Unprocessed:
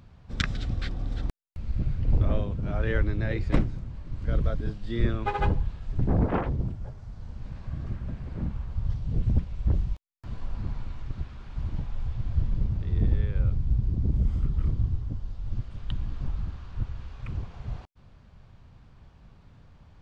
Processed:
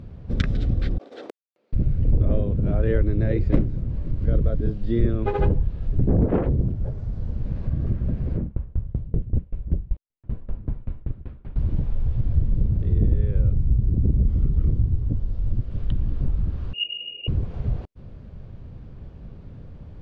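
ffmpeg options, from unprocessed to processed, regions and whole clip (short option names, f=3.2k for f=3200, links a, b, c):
-filter_complex "[0:a]asettb=1/sr,asplit=3[a][b][c];[a]atrim=end=0.984[d];[b]atrim=start=0.98:end=1.73,asetpts=PTS-STARTPTS,afade=t=in:d=0.004:c=qsin,afade=t=out:st=0.746:d=0.004:c=qsin,highpass=f=420:w=0.5412,highpass=f=420:w=1.3066,agate=range=-20dB:threshold=-52dB:ratio=16:release=100:detection=peak[e];[c]atrim=start=1.726[f];[d][e]acrossfade=d=0.004:c1=hsin:c2=qsin[g];[g][f]acrossfade=d=0.004:c1=qsin:c2=hsin,asettb=1/sr,asplit=3[h][i][j];[h]atrim=end=8.374[k];[i]atrim=start=8.37:end=11.56,asetpts=PTS-STARTPTS,afade=t=in:d=0.004:c=qsin,afade=t=out:st=3.186:d=0.004:c=qsin,lowpass=2.8k,aeval=exprs='val(0)*pow(10,-27*if(lt(mod(5.2*n/s,1),2*abs(5.2)/1000),1-mod(5.2*n/s,1)/(2*abs(5.2)/1000),(mod(5.2*n/s,1)-2*abs(5.2)/1000)/(1-2*abs(5.2)/1000))/20)':c=same[l];[j]atrim=start=11.556[m];[k][l]acrossfade=d=0.004:c1=hsin:c2=qsin[n];[n][m]acrossfade=d=0.004:c1=qsin:c2=hsin,asettb=1/sr,asplit=3[o][p][q];[o]atrim=end=16.734[r];[p]atrim=start=16.73:end=17.28,asetpts=PTS-STARTPTS,afade=t=in:d=0.004:c=qsin,afade=t=out:st=0.546:d=0.004:c=qsin,asuperstop=centerf=1100:order=12:qfactor=0.61,lowpass=f=2.5k:t=q:w=0.5098,lowpass=f=2.5k:t=q:w=0.6013,lowpass=f=2.5k:t=q:w=0.9,lowpass=f=2.5k:t=q:w=2.563,afreqshift=-2900[s];[q]atrim=start=17.276[t];[r][s]acrossfade=d=0.004:c1=hsin:c2=qsin[u];[u][t]acrossfade=d=0.004:c1=qsin:c2=hsin,lowpass=f=3.1k:p=1,lowshelf=f=660:t=q:w=1.5:g=8,acompressor=threshold=-26dB:ratio=2,volume=4.5dB"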